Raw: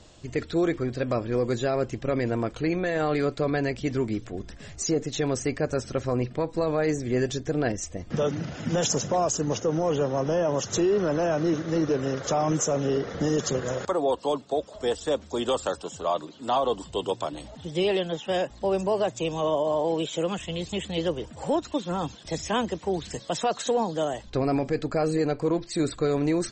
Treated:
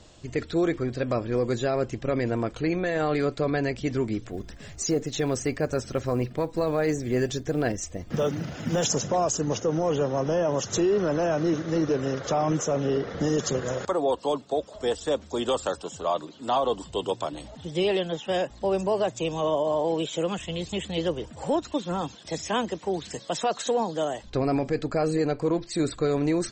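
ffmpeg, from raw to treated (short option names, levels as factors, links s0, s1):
-filter_complex "[0:a]asettb=1/sr,asplit=3[s0][s1][s2];[s0]atrim=end=4.294[s3];[s1]atrim=start=4.29:end=8.9,asetpts=PTS-STARTPTS,afade=t=in:d=0.004:c=qsin,afade=t=out:st=4.606:d=0.004:c=qsin,acrusher=bits=9:mode=log:mix=0:aa=0.000001[s4];[s2]atrim=start=8.896[s5];[s3][s4]acrossfade=d=0.004:c1=hsin:c2=qsin[s6];[s6][s5]acrossfade=d=0.004:c1=qsin:c2=hsin,asettb=1/sr,asplit=3[s7][s8][s9];[s7]atrim=end=12.194[s10];[s8]atrim=start=12.19:end=13.17,asetpts=PTS-STARTPTS,afade=t=in:d=0.004:c=qsin,afade=t=out:st=0.976:d=0.004:c=qsin,lowpass=5400[s11];[s9]atrim=start=13.166[s12];[s10][s11]acrossfade=d=0.004:c1=hsin:c2=qsin[s13];[s13][s12]acrossfade=d=0.004:c1=qsin:c2=hsin,asettb=1/sr,asplit=3[s14][s15][s16];[s14]atrim=end=22.014[s17];[s15]atrim=start=22.01:end=24.23,asetpts=PTS-STARTPTS,afade=t=in:d=0.004:c=qsin,afade=t=out:st=2.216:d=0.004:c=qsin,highpass=f=150:p=1[s18];[s16]atrim=start=24.226[s19];[s17][s18]acrossfade=d=0.004:c1=hsin:c2=qsin[s20];[s20][s19]acrossfade=d=0.004:c1=qsin:c2=hsin"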